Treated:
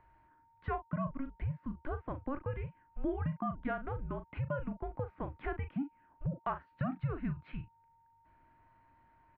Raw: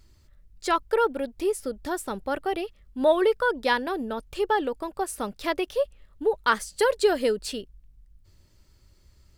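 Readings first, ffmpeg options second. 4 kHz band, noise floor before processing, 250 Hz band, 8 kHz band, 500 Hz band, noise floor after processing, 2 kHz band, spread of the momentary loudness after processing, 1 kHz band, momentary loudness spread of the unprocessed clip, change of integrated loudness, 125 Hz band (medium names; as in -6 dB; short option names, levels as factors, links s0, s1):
under -25 dB, -59 dBFS, -7.0 dB, under -40 dB, -18.5 dB, -68 dBFS, -18.0 dB, 7 LU, -14.0 dB, 10 LU, -13.0 dB, no reading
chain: -filter_complex "[0:a]highpass=f=110:w=0.5412,highpass=f=110:w=1.3066,asplit=2[s0][s1];[s1]adelay=39,volume=0.299[s2];[s0][s2]amix=inputs=2:normalize=0,acompressor=threshold=0.01:ratio=3,aeval=exprs='val(0)+0.000447*sin(2*PI*1200*n/s)':c=same,highpass=f=200:t=q:w=0.5412,highpass=f=200:t=q:w=1.307,lowpass=f=2400:t=q:w=0.5176,lowpass=f=2400:t=q:w=0.7071,lowpass=f=2400:t=q:w=1.932,afreqshift=-280,volume=1.26"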